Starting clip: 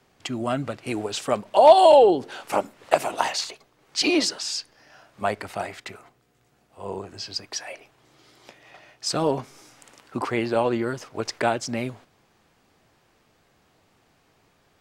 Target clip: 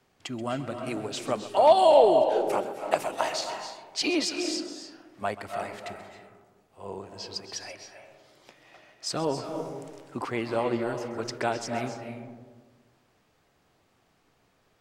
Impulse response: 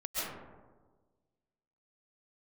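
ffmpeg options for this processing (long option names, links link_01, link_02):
-filter_complex "[0:a]asplit=2[link_01][link_02];[1:a]atrim=start_sample=2205,adelay=131[link_03];[link_02][link_03]afir=irnorm=-1:irlink=0,volume=-11dB[link_04];[link_01][link_04]amix=inputs=2:normalize=0,volume=-5.5dB"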